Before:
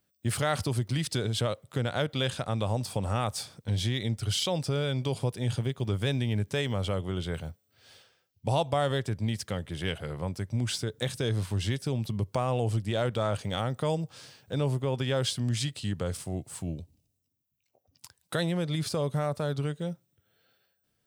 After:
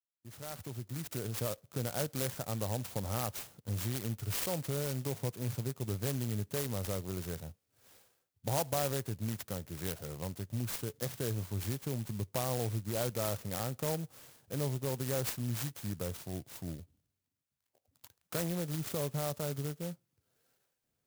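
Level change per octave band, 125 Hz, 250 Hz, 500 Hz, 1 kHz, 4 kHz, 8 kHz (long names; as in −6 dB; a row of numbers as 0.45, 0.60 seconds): −7.5, −6.5, −6.5, −8.0, −10.5, −1.0 decibels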